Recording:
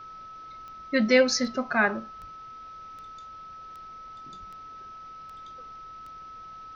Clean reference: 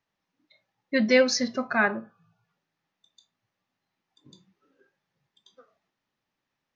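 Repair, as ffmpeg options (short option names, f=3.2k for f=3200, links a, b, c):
-filter_complex "[0:a]adeclick=t=4,bandreject=f=1.3k:w=30,asplit=3[a][b][c];[a]afade=t=out:st=2.2:d=0.02[d];[b]highpass=f=140:w=0.5412,highpass=f=140:w=1.3066,afade=t=in:st=2.2:d=0.02,afade=t=out:st=2.32:d=0.02[e];[c]afade=t=in:st=2.32:d=0.02[f];[d][e][f]amix=inputs=3:normalize=0,asplit=3[g][h][i];[g]afade=t=out:st=4.39:d=0.02[j];[h]highpass=f=140:w=0.5412,highpass=f=140:w=1.3066,afade=t=in:st=4.39:d=0.02,afade=t=out:st=4.51:d=0.02[k];[i]afade=t=in:st=4.51:d=0.02[l];[j][k][l]amix=inputs=3:normalize=0,agate=range=-21dB:threshold=-36dB"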